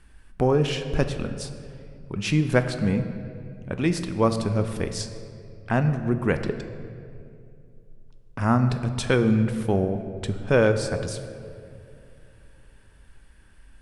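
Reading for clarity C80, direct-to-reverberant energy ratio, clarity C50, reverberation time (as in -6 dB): 10.5 dB, 8.0 dB, 9.5 dB, 2.5 s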